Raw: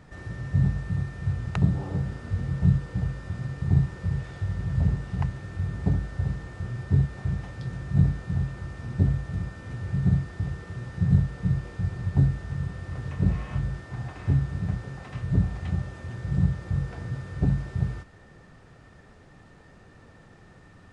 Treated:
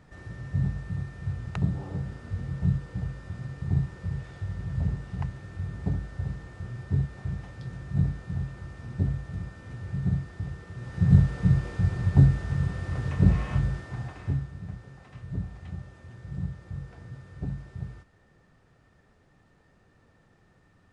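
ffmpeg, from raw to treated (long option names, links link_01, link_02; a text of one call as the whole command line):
ffmpeg -i in.wav -af "volume=3.5dB,afade=type=in:start_time=10.75:duration=0.46:silence=0.398107,afade=type=out:start_time=13.48:duration=1.04:silence=0.211349" out.wav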